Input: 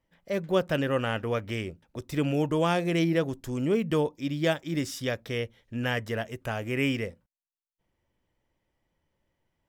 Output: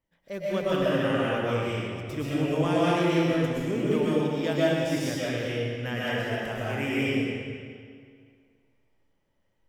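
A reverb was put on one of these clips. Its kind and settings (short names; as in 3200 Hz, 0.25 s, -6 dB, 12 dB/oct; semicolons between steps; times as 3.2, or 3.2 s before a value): digital reverb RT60 2.1 s, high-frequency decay 0.85×, pre-delay 85 ms, DRR -8 dB; gain -6.5 dB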